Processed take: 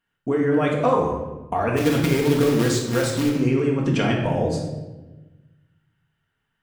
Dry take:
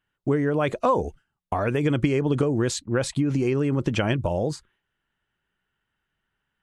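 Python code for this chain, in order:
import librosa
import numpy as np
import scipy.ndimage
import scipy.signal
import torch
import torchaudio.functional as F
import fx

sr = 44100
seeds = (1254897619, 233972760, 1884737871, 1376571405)

y = fx.quant_companded(x, sr, bits=4, at=(1.76, 3.29), fade=0.02)
y = fx.low_shelf(y, sr, hz=73.0, db=-7.5)
y = fx.room_shoebox(y, sr, seeds[0], volume_m3=590.0, walls='mixed', distance_m=1.7)
y = y * librosa.db_to_amplitude(-1.0)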